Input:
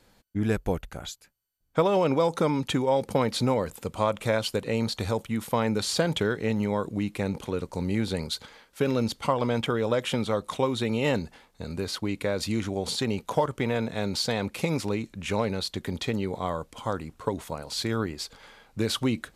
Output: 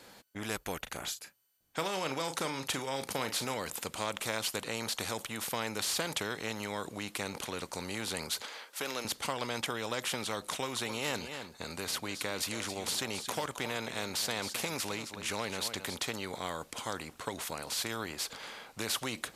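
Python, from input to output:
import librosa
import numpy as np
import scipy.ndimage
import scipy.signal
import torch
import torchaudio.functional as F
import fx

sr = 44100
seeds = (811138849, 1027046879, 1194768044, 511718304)

y = fx.doubler(x, sr, ms=37.0, db=-12.0, at=(0.85, 3.54), fade=0.02)
y = fx.highpass(y, sr, hz=410.0, slope=12, at=(8.41, 9.05))
y = fx.echo_single(y, sr, ms=267, db=-15.5, at=(10.68, 15.96), fade=0.02)
y = fx.highpass(y, sr, hz=340.0, slope=6)
y = fx.spectral_comp(y, sr, ratio=2.0)
y = y * 10.0 ** (-5.5 / 20.0)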